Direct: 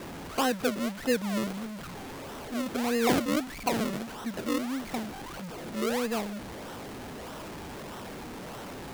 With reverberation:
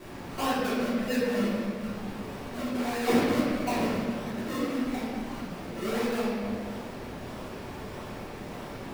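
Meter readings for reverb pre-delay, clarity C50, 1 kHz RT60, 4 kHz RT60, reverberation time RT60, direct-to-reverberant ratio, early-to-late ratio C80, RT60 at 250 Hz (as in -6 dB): 3 ms, -2.0 dB, 1.6 s, 1.2 s, 2.0 s, -11.0 dB, 0.0 dB, 2.5 s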